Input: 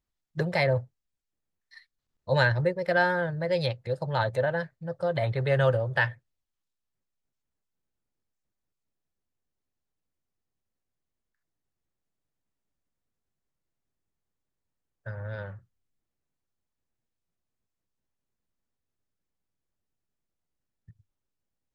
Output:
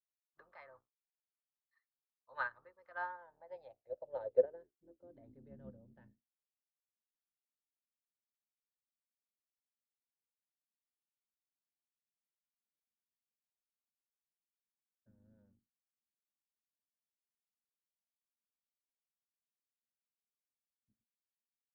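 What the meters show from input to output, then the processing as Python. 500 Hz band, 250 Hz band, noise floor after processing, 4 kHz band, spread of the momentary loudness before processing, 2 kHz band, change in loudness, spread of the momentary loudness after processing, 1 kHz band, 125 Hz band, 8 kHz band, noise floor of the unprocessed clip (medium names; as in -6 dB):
-14.0 dB, -25.5 dB, under -85 dBFS, under -30 dB, 15 LU, -19.0 dB, -12.5 dB, 24 LU, -16.5 dB, -37.5 dB, no reading, -85 dBFS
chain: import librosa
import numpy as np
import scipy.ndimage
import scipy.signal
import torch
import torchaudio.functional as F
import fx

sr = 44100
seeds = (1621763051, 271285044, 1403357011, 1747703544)

y = fx.octave_divider(x, sr, octaves=2, level_db=1.0)
y = fx.peak_eq(y, sr, hz=160.0, db=-11.5, octaves=0.45)
y = fx.filter_sweep_bandpass(y, sr, from_hz=1200.0, to_hz=220.0, start_s=2.86, end_s=5.57, q=6.4)
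y = fx.upward_expand(y, sr, threshold_db=-41.0, expansion=2.5)
y = y * librosa.db_to_amplitude(6.0)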